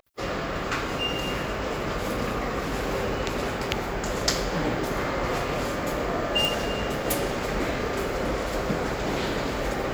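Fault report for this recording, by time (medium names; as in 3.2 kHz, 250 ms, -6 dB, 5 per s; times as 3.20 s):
6.45 s: pop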